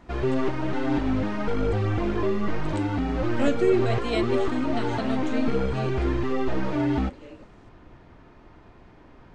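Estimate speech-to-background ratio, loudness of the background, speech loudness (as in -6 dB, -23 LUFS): -2.5 dB, -27.0 LUFS, -29.5 LUFS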